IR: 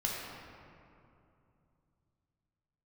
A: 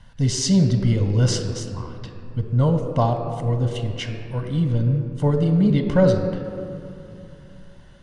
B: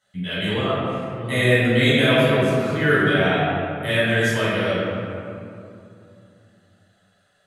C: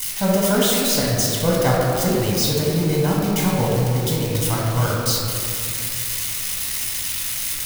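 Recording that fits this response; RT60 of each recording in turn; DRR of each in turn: C; 2.8 s, 2.7 s, 2.7 s; 5.0 dB, -12.0 dB, -4.5 dB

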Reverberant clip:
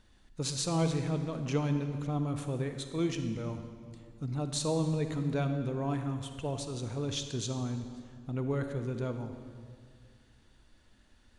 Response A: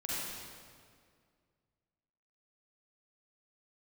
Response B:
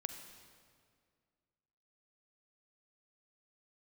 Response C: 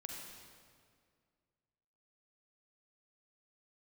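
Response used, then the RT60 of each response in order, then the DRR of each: B; 2.1 s, 2.1 s, 2.1 s; -8.0 dB, 7.0 dB, 0.0 dB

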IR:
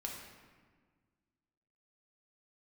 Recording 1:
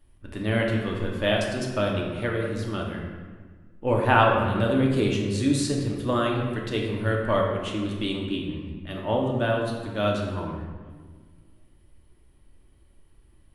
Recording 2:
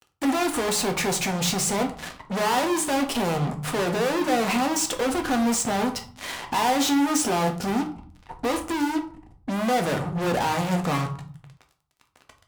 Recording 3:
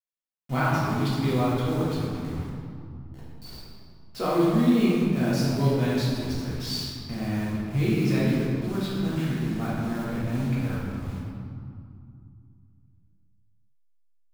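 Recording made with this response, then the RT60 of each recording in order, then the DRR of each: 1; 1.6 s, 0.50 s, 2.4 s; -1.5 dB, 3.5 dB, -9.0 dB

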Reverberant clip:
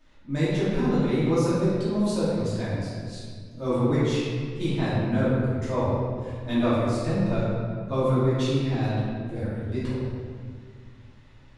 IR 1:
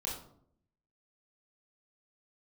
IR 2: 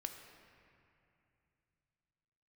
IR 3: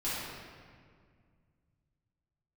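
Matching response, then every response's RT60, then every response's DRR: 3; 0.65 s, 2.7 s, 2.0 s; -4.0 dB, 4.5 dB, -11.5 dB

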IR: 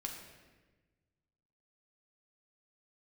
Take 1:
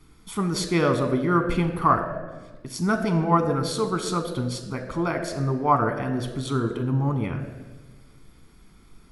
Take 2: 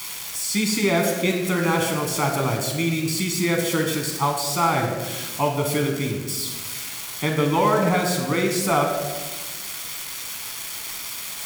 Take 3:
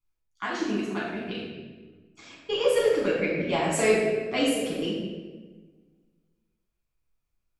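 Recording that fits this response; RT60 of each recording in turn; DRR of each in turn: 2; 1.3 s, 1.3 s, 1.3 s; 6.0 dB, 1.0 dB, -6.5 dB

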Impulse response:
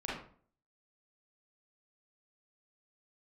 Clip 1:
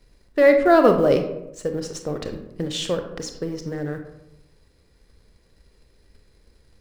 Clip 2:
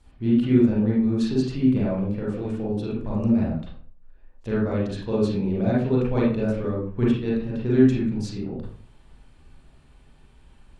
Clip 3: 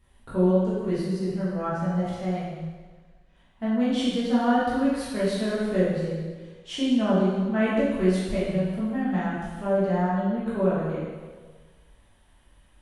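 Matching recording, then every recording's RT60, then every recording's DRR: 2; 0.85 s, 0.50 s, 1.5 s; 5.5 dB, -6.5 dB, -10.0 dB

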